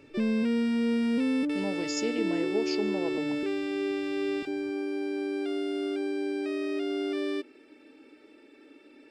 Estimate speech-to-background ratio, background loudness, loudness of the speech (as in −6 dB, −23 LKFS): −5.0 dB, −30.0 LKFS, −35.0 LKFS